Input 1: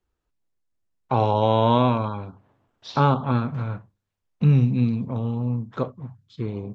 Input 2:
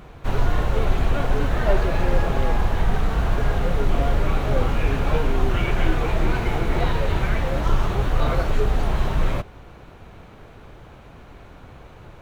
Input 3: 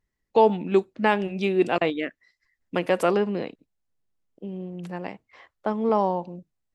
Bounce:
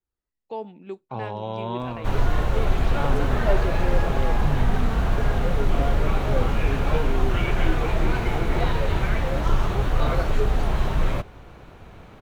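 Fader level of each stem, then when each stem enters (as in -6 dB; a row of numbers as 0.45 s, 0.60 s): -11.5 dB, -1.0 dB, -15.5 dB; 0.00 s, 1.80 s, 0.15 s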